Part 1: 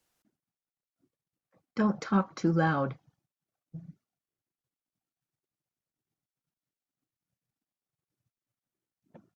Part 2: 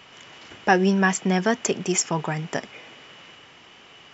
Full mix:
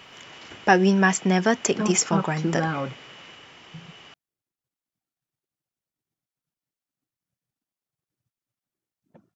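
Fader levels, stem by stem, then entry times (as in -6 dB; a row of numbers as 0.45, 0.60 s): +0.5, +1.0 dB; 0.00, 0.00 s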